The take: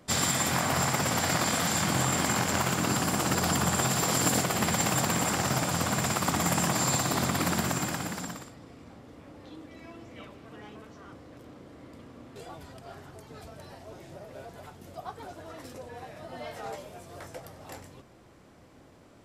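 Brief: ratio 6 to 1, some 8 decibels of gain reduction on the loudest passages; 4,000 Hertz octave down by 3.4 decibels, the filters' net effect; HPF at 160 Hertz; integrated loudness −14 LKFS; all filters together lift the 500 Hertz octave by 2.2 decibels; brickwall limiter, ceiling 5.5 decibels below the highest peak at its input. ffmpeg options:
ffmpeg -i in.wav -af "highpass=160,equalizer=frequency=500:width_type=o:gain=3,equalizer=frequency=4000:width_type=o:gain=-4.5,acompressor=threshold=-32dB:ratio=6,volume=24.5dB,alimiter=limit=-1dB:level=0:latency=1" out.wav

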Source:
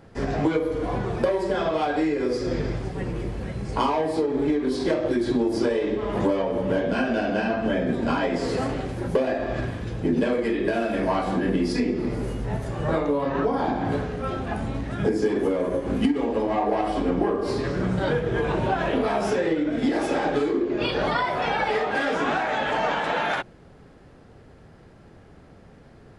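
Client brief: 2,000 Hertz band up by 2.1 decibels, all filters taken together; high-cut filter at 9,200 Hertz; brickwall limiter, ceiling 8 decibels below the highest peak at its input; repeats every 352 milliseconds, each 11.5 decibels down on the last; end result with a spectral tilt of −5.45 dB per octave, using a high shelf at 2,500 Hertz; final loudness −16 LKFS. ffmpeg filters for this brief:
ffmpeg -i in.wav -af "lowpass=9200,equalizer=frequency=2000:width_type=o:gain=5.5,highshelf=frequency=2500:gain=-6.5,alimiter=limit=-18dB:level=0:latency=1,aecho=1:1:352|704|1056:0.266|0.0718|0.0194,volume=11dB" out.wav

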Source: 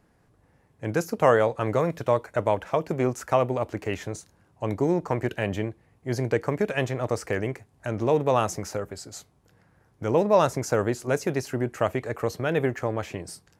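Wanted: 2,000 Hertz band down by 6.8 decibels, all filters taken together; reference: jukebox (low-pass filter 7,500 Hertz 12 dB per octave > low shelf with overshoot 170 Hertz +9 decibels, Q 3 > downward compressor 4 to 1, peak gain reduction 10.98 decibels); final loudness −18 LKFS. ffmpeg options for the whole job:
ffmpeg -i in.wav -af "lowpass=7500,lowshelf=frequency=170:width_type=q:width=3:gain=9,equalizer=frequency=2000:width_type=o:gain=-9,acompressor=threshold=-25dB:ratio=4,volume=11dB" out.wav

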